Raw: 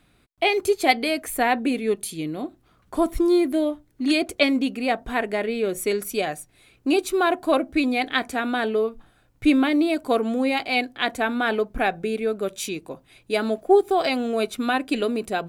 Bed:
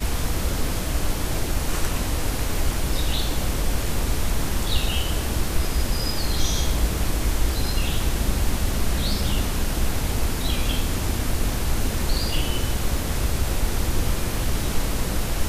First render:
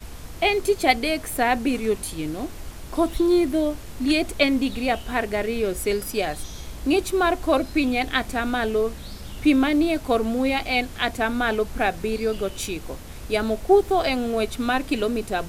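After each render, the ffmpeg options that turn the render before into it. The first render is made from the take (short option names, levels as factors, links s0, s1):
-filter_complex "[1:a]volume=0.2[s0];[0:a][s0]amix=inputs=2:normalize=0"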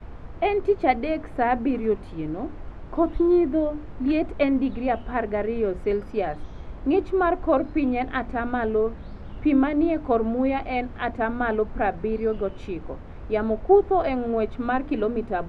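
-af "lowpass=1400,bandreject=f=60:t=h:w=6,bandreject=f=120:t=h:w=6,bandreject=f=180:t=h:w=6,bandreject=f=240:t=h:w=6,bandreject=f=300:t=h:w=6"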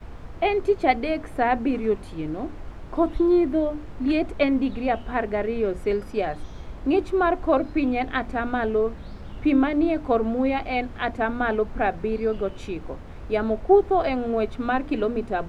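-af "crystalizer=i=2.5:c=0"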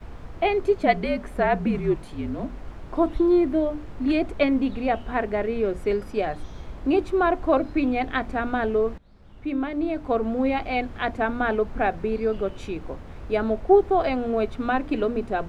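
-filter_complex "[0:a]asettb=1/sr,asplit=3[s0][s1][s2];[s0]atrim=end=0.834[s3];[s1]atrim=start=0.83:end=2.62,asetpts=PTS-STARTPTS,afade=t=in:d=0.004:c=qsin,afade=t=out:st=1.786:d=0.004:c=qsin,afreqshift=-54[s4];[s2]atrim=start=2.616[s5];[s3][s4]acrossfade=d=0.004:c1=hsin:c2=qsin[s6];[s6][s5]acrossfade=d=0.004:c1=qsin:c2=hsin,asplit=2[s7][s8];[s7]atrim=end=8.98,asetpts=PTS-STARTPTS,afade=t=out:st=8.976:d=0.004:c=hsin:silence=0.0749894[s9];[s8]atrim=start=8.98,asetpts=PTS-STARTPTS,afade=t=in:d=1.53:silence=0.0749894[s10];[s9][s10]concat=n=2:v=0:a=1"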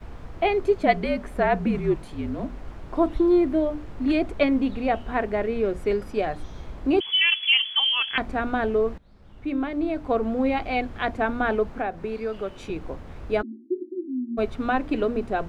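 -filter_complex "[0:a]asettb=1/sr,asplit=3[s0][s1][s2];[s0]atrim=end=7.004[s3];[s1]atrim=start=7:end=8.18,asetpts=PTS-STARTPTS,afade=t=in:d=0.004:c=qsin,afade=t=out:st=1.176:d=0.004:c=qsin,lowpass=f=2900:t=q:w=0.5098,lowpass=f=2900:t=q:w=0.6013,lowpass=f=2900:t=q:w=0.9,lowpass=f=2900:t=q:w=2.563,afreqshift=-3400[s4];[s2]atrim=start=8.176[s5];[s3][s4]acrossfade=d=0.004:c1=hsin:c2=qsin[s6];[s6][s5]acrossfade=d=0.004:c1=qsin:c2=hsin,asettb=1/sr,asplit=3[s7][s8][s9];[s7]atrim=end=11.704[s10];[s8]atrim=start=11.7:end=12.7,asetpts=PTS-STARTPTS,afade=t=in:d=0.004:c=qsin,afade=t=out:st=0.996:d=0.004:c=qsin,acrossover=split=150|660|1500[s11][s12][s13][s14];[s11]acompressor=threshold=0.00631:ratio=3[s15];[s12]acompressor=threshold=0.0282:ratio=3[s16];[s13]acompressor=threshold=0.0251:ratio=3[s17];[s14]acompressor=threshold=0.00794:ratio=3[s18];[s15][s16][s17][s18]amix=inputs=4:normalize=0[s19];[s9]atrim=start=12.696[s20];[s10][s19]acrossfade=d=0.004:c1=hsin:c2=qsin[s21];[s21][s20]acrossfade=d=0.004:c1=qsin:c2=hsin,asplit=3[s22][s23][s24];[s22]afade=t=out:st=13.41:d=0.02[s25];[s23]asuperpass=centerf=290:order=20:qfactor=2.1,afade=t=in:st=13.41:d=0.02,afade=t=out:st=14.37:d=0.02[s26];[s24]afade=t=in:st=14.37:d=0.02[s27];[s25][s26][s27]amix=inputs=3:normalize=0"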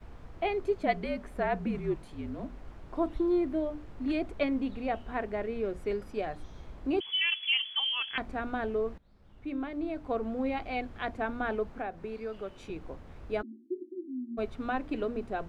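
-af "volume=0.376"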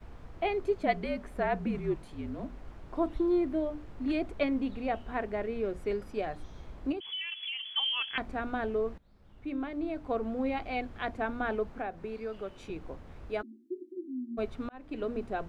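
-filter_complex "[0:a]asettb=1/sr,asplit=3[s0][s1][s2];[s0]atrim=end=6.924[s3];[s1]atrim=start=6.92:end=7.74,asetpts=PTS-STARTPTS,afade=t=in:d=0.004:c=qsin,afade=t=out:st=0.816:d=0.004:c=qsin,acompressor=threshold=0.02:ratio=6:attack=3.2:release=140:knee=1:detection=peak[s4];[s2]atrim=start=7.736[s5];[s3][s4]acrossfade=d=0.004:c1=hsin:c2=qsin[s6];[s6][s5]acrossfade=d=0.004:c1=qsin:c2=hsin,asettb=1/sr,asplit=3[s7][s8][s9];[s7]atrim=end=13.294[s10];[s8]atrim=start=13.29:end=13.97,asetpts=PTS-STARTPTS,afade=t=in:d=0.004:c=qsin,afade=t=out:st=0.676:d=0.004:c=qsin,lowshelf=f=320:g=-6[s11];[s9]atrim=start=13.966[s12];[s10][s11]acrossfade=d=0.004:c1=hsin:c2=qsin[s13];[s13][s12]acrossfade=d=0.004:c1=qsin:c2=hsin,asplit=2[s14][s15];[s14]atrim=end=14.69,asetpts=PTS-STARTPTS,afade=t=out:st=14.686:d=0.004:c=hsin[s16];[s15]atrim=start=14.69,asetpts=PTS-STARTPTS,afade=t=in:d=0.43[s17];[s16][s17]concat=n=2:v=0:a=1"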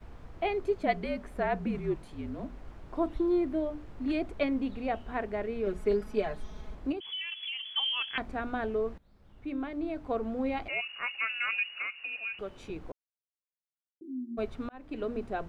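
-filter_complex "[0:a]asettb=1/sr,asplit=3[s0][s1][s2];[s0]atrim=end=5.664[s3];[s1]atrim=start=5.66:end=6.75,asetpts=PTS-STARTPTS,afade=t=in:d=0.004:c=qsin,afade=t=out:st=1.086:d=0.004:c=qsin,aecho=1:1:4.7:0.9,atrim=end_sample=48069[s4];[s2]atrim=start=6.746[s5];[s3][s4]acrossfade=d=0.004:c1=hsin:c2=qsin[s6];[s6][s5]acrossfade=d=0.004:c1=qsin:c2=hsin,asettb=1/sr,asplit=3[s7][s8][s9];[s7]atrim=end=10.684[s10];[s8]atrim=start=10.68:end=12.39,asetpts=PTS-STARTPTS,afade=t=in:d=0.004:c=qsin,afade=t=out:st=1.706:d=0.004:c=qsin,lowpass=f=2500:t=q:w=0.5098,lowpass=f=2500:t=q:w=0.6013,lowpass=f=2500:t=q:w=0.9,lowpass=f=2500:t=q:w=2.563,afreqshift=-2900[s11];[s9]atrim=start=12.386[s12];[s10][s11]acrossfade=d=0.004:c1=hsin:c2=qsin[s13];[s13][s12]acrossfade=d=0.004:c1=qsin:c2=hsin,asplit=3[s14][s15][s16];[s14]atrim=end=12.92,asetpts=PTS-STARTPTS,afade=t=out:st=12.916:d=0.004:c=hsin[s17];[s15]atrim=start=12.92:end=14.01,asetpts=PTS-STARTPTS,volume=0[s18];[s16]atrim=start=14.01,asetpts=PTS-STARTPTS,afade=t=in:d=0.004:c=hsin[s19];[s17][s18][s19]concat=n=3:v=0:a=1"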